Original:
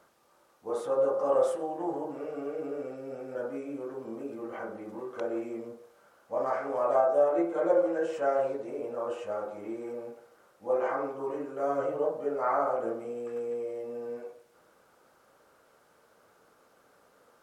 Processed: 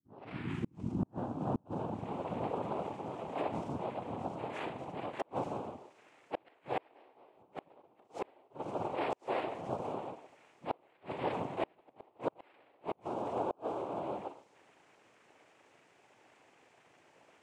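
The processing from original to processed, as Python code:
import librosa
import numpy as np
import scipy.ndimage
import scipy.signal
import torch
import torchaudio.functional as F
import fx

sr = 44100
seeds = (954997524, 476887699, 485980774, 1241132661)

y = fx.tape_start_head(x, sr, length_s=2.94)
y = fx.noise_vocoder(y, sr, seeds[0], bands=4)
y = fx.gate_flip(y, sr, shuts_db=-21.0, range_db=-36)
y = F.gain(torch.from_numpy(y), -1.0).numpy()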